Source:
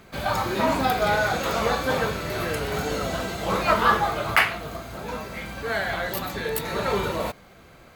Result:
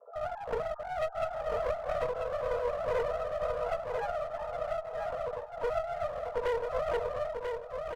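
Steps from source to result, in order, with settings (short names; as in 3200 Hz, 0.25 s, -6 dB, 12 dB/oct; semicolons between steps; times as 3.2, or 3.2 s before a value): sine-wave speech; elliptic low-pass 660 Hz, stop band 80 dB; comb 4.6 ms, depth 100%; compressor 3:1, threshold -35 dBFS, peak gain reduction 18 dB; resonant high-pass 470 Hz, resonance Q 4.9; chorus 0.27 Hz, delay 18 ms, depth 4.4 ms; harmoniser +3 st -14 dB, +12 st -15 dB; one-sided clip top -39 dBFS, bottom -22.5 dBFS; feedback echo 0.991 s, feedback 20%, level -5 dB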